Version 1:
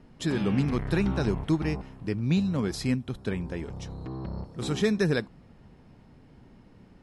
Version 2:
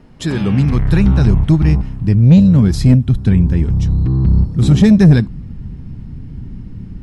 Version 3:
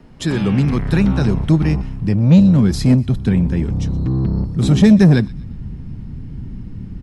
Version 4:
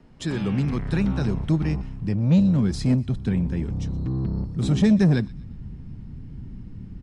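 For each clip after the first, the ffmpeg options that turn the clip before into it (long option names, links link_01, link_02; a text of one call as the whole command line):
ffmpeg -i in.wav -af "asubboost=boost=11.5:cutoff=180,acontrast=87,volume=1.5dB" out.wav
ffmpeg -i in.wav -filter_complex "[0:a]acrossover=split=150|930|1700[link_01][link_02][link_03][link_04];[link_01]asoftclip=type=tanh:threshold=-20.5dB[link_05];[link_04]aecho=1:1:121|242|363:0.0944|0.0378|0.0151[link_06];[link_05][link_02][link_03][link_06]amix=inputs=4:normalize=0" out.wav
ffmpeg -i in.wav -af "aresample=22050,aresample=44100,volume=-8dB" out.wav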